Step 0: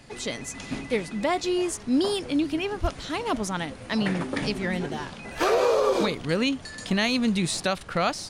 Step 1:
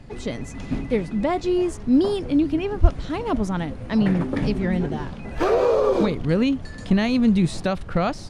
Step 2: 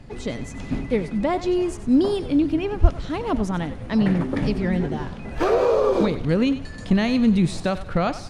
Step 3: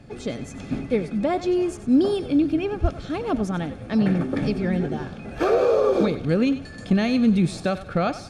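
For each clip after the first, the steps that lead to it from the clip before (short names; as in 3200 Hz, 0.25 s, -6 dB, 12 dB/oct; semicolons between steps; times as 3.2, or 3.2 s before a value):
tilt -3 dB/oct
thinning echo 94 ms, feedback 37%, level -13 dB
notch comb 980 Hz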